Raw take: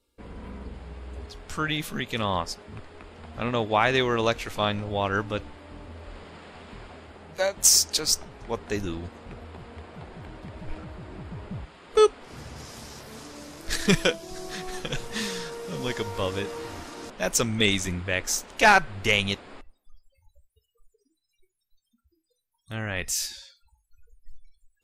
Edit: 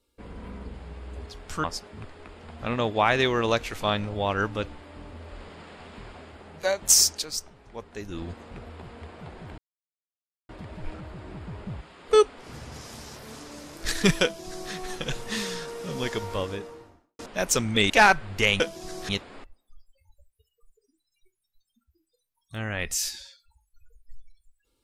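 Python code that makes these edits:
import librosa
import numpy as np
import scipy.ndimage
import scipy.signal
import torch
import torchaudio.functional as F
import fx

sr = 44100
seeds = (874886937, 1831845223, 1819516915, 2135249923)

y = fx.studio_fade_out(x, sr, start_s=16.01, length_s=1.02)
y = fx.edit(y, sr, fx.cut(start_s=1.64, length_s=0.75),
    fx.fade_down_up(start_s=7.84, length_s=1.14, db=-8.5, fade_s=0.15),
    fx.insert_silence(at_s=10.33, length_s=0.91),
    fx.duplicate(start_s=14.07, length_s=0.49, to_s=19.26),
    fx.cut(start_s=17.74, length_s=0.82), tone=tone)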